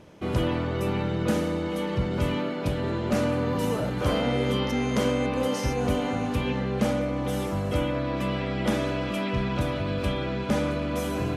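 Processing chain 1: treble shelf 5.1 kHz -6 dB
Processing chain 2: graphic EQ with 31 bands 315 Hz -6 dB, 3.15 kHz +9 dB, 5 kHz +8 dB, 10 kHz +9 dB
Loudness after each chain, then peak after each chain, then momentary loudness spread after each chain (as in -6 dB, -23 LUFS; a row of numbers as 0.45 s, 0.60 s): -27.5 LUFS, -27.0 LUFS; -13.0 dBFS, -12.0 dBFS; 3 LU, 4 LU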